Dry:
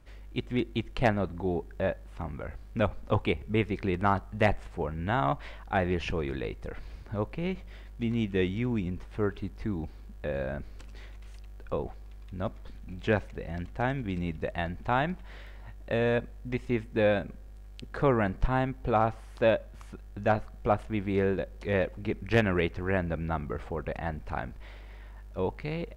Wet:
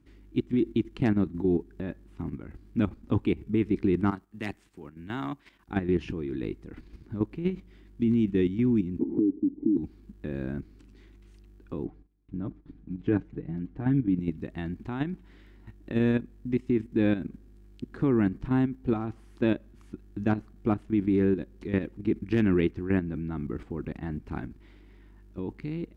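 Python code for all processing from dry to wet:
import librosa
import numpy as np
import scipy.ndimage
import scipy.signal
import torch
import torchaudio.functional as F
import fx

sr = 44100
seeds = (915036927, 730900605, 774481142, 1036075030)

y = fx.chain(x, sr, fx.tilt_eq(slope=2.5),
    fx.transient(attack_db=-3, sustain_db=-7),
    fx.band_widen(depth_pct=40), at=(4.11, 5.69))
y = fx.chain(y, sr, fx.formant_cascade(vowel='u'),
    fx.small_body(hz=(270.0, 420.0), ring_ms=25, db=11),
    fx.band_squash(depth_pct=100), at=(8.99, 9.77))
y = fx.chain(y, sr, fx.gate_hold(open_db=-37.0, close_db=-42.0, hold_ms=71.0, range_db=-21, attack_ms=1.4, release_ms=100.0),
    fx.lowpass(hz=1100.0, slope=6),
    fx.comb(ms=6.7, depth=0.63), at=(11.85, 14.2))
y = fx.highpass(y, sr, hz=130.0, slope=6)
y = fx.low_shelf_res(y, sr, hz=420.0, db=9.5, q=3.0)
y = fx.level_steps(y, sr, step_db=10)
y = y * 10.0 ** (-2.5 / 20.0)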